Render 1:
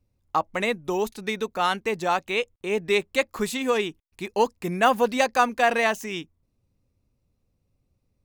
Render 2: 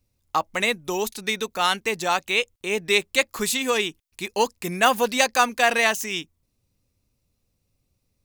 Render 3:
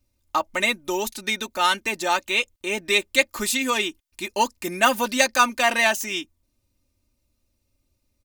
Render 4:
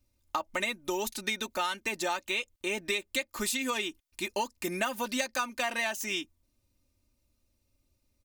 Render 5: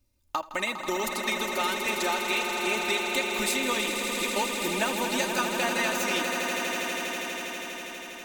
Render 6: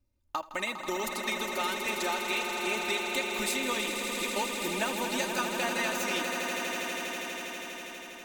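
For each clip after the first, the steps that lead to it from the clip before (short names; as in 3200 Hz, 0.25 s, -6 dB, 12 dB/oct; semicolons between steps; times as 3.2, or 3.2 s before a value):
high shelf 2200 Hz +12 dB; gain -1.5 dB
comb 3.3 ms, depth 70%; gain -1 dB
compressor 10:1, threshold -25 dBFS, peak gain reduction 14 dB; gain -2.5 dB
swelling echo 81 ms, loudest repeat 8, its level -9.5 dB; gain +1.5 dB
mismatched tape noise reduction decoder only; gain -3.5 dB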